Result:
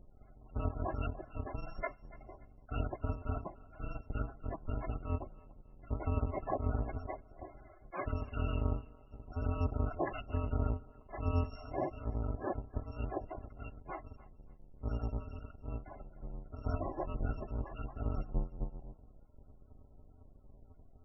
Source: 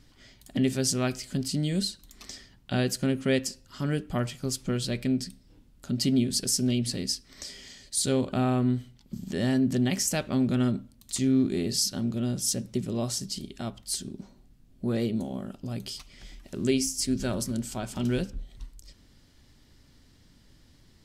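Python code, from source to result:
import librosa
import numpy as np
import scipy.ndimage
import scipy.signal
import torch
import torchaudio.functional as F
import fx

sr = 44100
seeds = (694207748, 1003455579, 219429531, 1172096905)

y = fx.bit_reversed(x, sr, seeds[0], block=256)
y = scipy.signal.sosfilt(scipy.signal.butter(2, 1100.0, 'lowpass', fs=sr, output='sos'), y)
y = fx.spec_topn(y, sr, count=32)
y = fx.echo_thinned(y, sr, ms=289, feedback_pct=31, hz=420.0, wet_db=-19.0)
y = F.gain(torch.from_numpy(y), 4.0).numpy()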